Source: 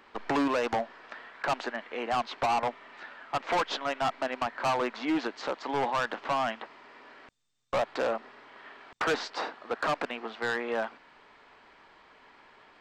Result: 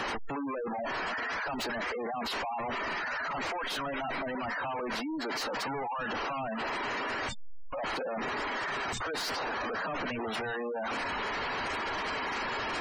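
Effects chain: one-bit comparator; band-stop 3.5 kHz, Q 24; spectral gate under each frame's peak -15 dB strong

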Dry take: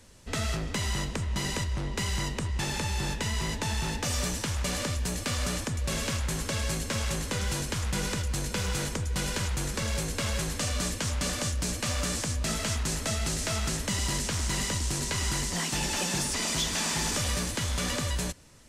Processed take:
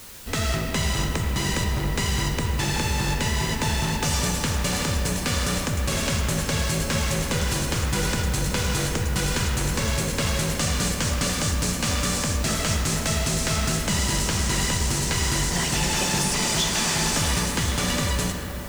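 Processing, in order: band-stop 610 Hz, Q 17; on a send at -3 dB: reverberation RT60 4.5 s, pre-delay 20 ms; on the sum: added noise white -48 dBFS; trim +5 dB

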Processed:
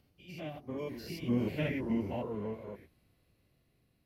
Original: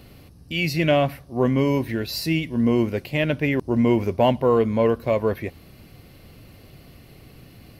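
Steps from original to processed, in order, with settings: spectrogram pixelated in time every 200 ms; Doppler pass-by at 2.98 s, 14 m/s, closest 7.5 m; plain phase-vocoder stretch 0.52×; trim -4 dB

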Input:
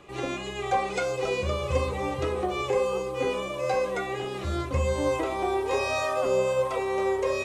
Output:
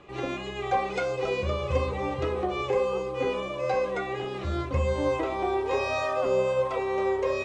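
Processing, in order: distance through air 99 m

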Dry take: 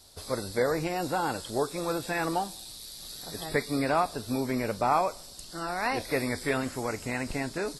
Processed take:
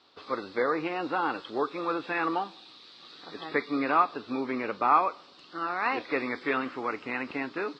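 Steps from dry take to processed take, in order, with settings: cabinet simulation 290–3600 Hz, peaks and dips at 300 Hz +5 dB, 630 Hz -7 dB, 1.2 kHz +9 dB, 2.7 kHz +4 dB

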